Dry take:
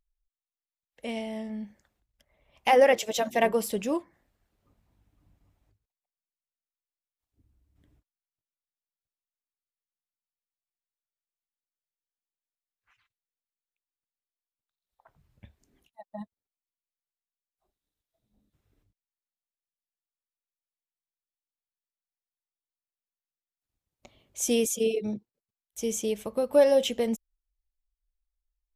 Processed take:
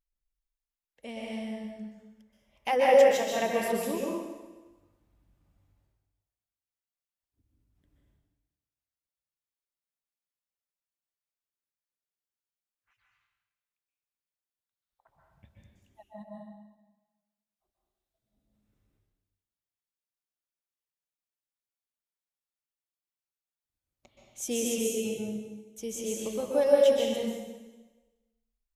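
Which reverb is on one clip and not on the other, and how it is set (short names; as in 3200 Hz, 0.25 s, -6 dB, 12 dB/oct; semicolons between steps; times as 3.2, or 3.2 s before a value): plate-style reverb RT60 1.2 s, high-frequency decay 0.95×, pre-delay 0.115 s, DRR -3.5 dB; gain -7 dB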